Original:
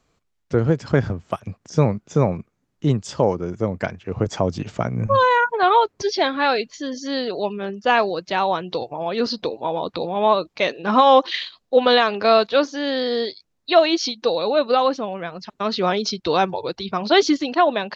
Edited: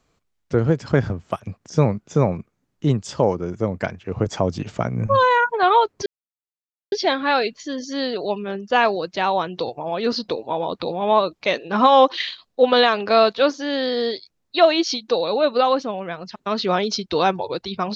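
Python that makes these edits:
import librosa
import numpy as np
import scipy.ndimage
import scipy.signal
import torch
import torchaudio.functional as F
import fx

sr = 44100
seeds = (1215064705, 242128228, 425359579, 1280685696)

y = fx.edit(x, sr, fx.insert_silence(at_s=6.06, length_s=0.86), tone=tone)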